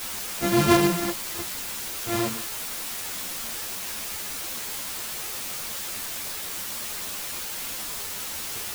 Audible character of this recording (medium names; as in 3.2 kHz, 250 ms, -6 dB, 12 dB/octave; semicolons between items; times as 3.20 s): a buzz of ramps at a fixed pitch in blocks of 128 samples; random-step tremolo, depth 55%; a quantiser's noise floor 6-bit, dither triangular; a shimmering, thickened sound